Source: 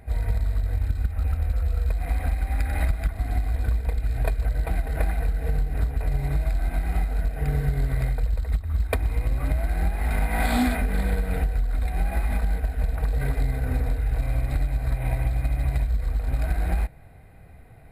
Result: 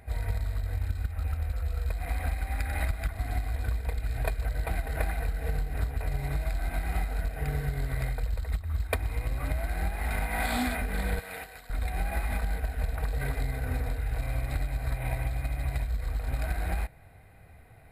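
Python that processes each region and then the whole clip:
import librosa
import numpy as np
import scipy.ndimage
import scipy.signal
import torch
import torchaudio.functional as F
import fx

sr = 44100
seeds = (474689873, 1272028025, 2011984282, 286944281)

y = fx.chain(x, sr, fx.highpass(hz=1000.0, slope=6),
    fx.notch(hz=1400.0, q=22.0), at=(11.19, 11.7))
y = fx.peak_eq(y, sr, hz=89.0, db=5.0, octaves=0.77)
y = fx.rider(y, sr, range_db=10, speed_s=0.5)
y = fx.low_shelf(y, sr, hz=490.0, db=-8.0)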